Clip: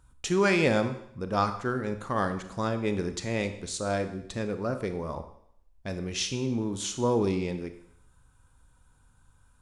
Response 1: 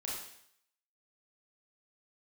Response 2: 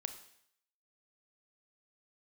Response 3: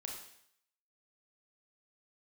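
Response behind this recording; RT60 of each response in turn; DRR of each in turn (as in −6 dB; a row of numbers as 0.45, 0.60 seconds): 2; 0.70, 0.70, 0.70 seconds; −5.0, 8.0, −0.5 decibels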